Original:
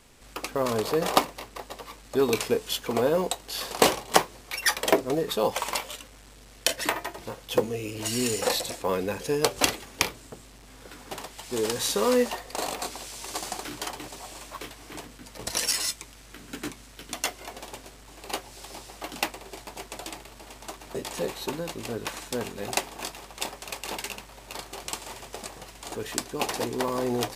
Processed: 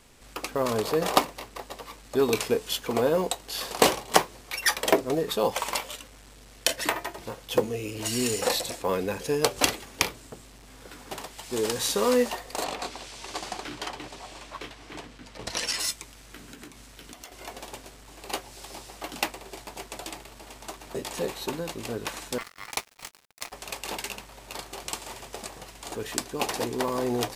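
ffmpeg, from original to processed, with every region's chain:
-filter_complex "[0:a]asettb=1/sr,asplit=3[s0][s1][s2];[s0]atrim=end=12.644[s3];[s1]atrim=start=12.64:end=15.79,asetpts=PTS-STARTPTS,afade=t=in:d=0.004:c=qsin,afade=t=out:st=3.146:d=0.004:c=qsin,lowpass=3500,aemphasis=mode=production:type=50fm[s4];[s2]atrim=start=15.786[s5];[s3][s4]acrossfade=d=0.004:c1=hsin:c2=qsin[s6];[s6][s5]acrossfade=d=0.004:c1=qsin:c2=hsin,asettb=1/sr,asplit=3[s7][s8][s9];[s7]atrim=end=16.464[s10];[s8]atrim=start=16.46:end=17.32,asetpts=PTS-STARTPTS,afade=t=in:d=0.004:c=qsin,afade=t=out:st=0.856:d=0.004:c=qsin,asoftclip=type=hard:threshold=0.126,acompressor=threshold=0.01:ratio=12:attack=3.2:release=140:knee=1:detection=peak[s11];[s9]atrim=start=17.316[s12];[s10][s11]acrossfade=d=0.004:c1=hsin:c2=qsin[s13];[s13][s12]acrossfade=d=0.004:c1=qsin:c2=hsin,asettb=1/sr,asplit=3[s14][s15][s16];[s14]atrim=end=22.384[s17];[s15]atrim=start=22.38:end=23.52,asetpts=PTS-STARTPTS,afade=t=in:d=0.004:c=qsin,afade=t=out:st=1.136:d=0.004:c=qsin,lowshelf=f=160:g=-3.5,aeval=exprs='val(0)*sin(2*PI*1600*n/s)':c=same,aeval=exprs='sgn(val(0))*max(abs(val(0))-0.0106,0)':c=same[s18];[s16]atrim=start=23.516[s19];[s17][s18]acrossfade=d=0.004:c1=hsin:c2=qsin[s20];[s20][s19]acrossfade=d=0.004:c1=qsin:c2=hsin"

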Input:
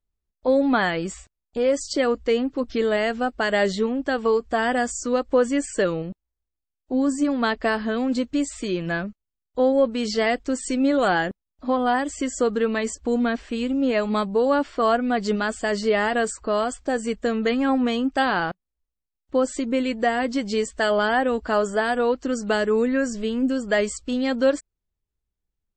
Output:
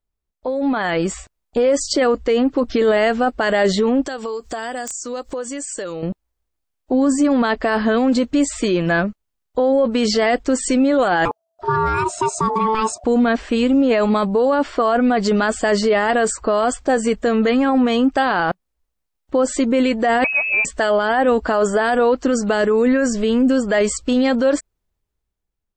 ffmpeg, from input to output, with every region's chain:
-filter_complex "[0:a]asettb=1/sr,asplit=3[s0][s1][s2];[s0]atrim=end=4.064[s3];[s1]atrim=start=4.06:end=6.03,asetpts=PTS-STARTPTS,afade=t=in:d=0.004:c=qsin,afade=t=out:st=1.966:d=0.004:c=qsin,bass=f=250:g=-4,treble=f=4000:g=14,acompressor=threshold=0.02:ratio=12:attack=3.2:release=140:knee=1:detection=peak,aeval=exprs='(mod(20*val(0)+1,2)-1)/20':c=same[s4];[s2]atrim=start=6.026[s5];[s3][s4]acrossfade=d=0.004:c1=hsin:c2=qsin[s6];[s6][s5]acrossfade=d=0.004:c1=qsin:c2=hsin,asettb=1/sr,asplit=3[s7][s8][s9];[s7]atrim=end=11.254[s10];[s8]atrim=start=11.25:end=13.04,asetpts=PTS-STARTPTS,afade=t=in:d=0.004:c=qsin,afade=t=out:st=1.786:d=0.004:c=qsin,equalizer=f=1300:w=2.8:g=-13,bandreject=f=3100:w=5.9,aeval=exprs='val(0)*sin(2*PI*660*n/s)':c=same[s11];[s9]atrim=start=13.036[s12];[s10][s11]acrossfade=d=0.004:c1=hsin:c2=qsin[s13];[s13][s12]acrossfade=d=0.004:c1=qsin:c2=hsin,asettb=1/sr,asplit=3[s14][s15][s16];[s14]atrim=end=20.244[s17];[s15]atrim=start=20.24:end=20.65,asetpts=PTS-STARTPTS,afade=t=in:d=0.004:c=qsin,afade=t=out:st=0.406:d=0.004:c=qsin,lowpass=f=2400:t=q:w=0.5098,lowpass=f=2400:t=q:w=0.6013,lowpass=f=2400:t=q:w=0.9,lowpass=f=2400:t=q:w=2.563,afreqshift=-2800,acompressor=threshold=0.0562:ratio=2.5:attack=3.2:release=140:knee=1:detection=peak[s18];[s16]atrim=start=20.646[s19];[s17][s18]acrossfade=d=0.004:c1=hsin:c2=qsin[s20];[s20][s19]acrossfade=d=0.004:c1=qsin:c2=hsin,equalizer=f=790:w=0.57:g=4.5,alimiter=limit=0.141:level=0:latency=1:release=17,dynaudnorm=f=130:g=13:m=2.51"

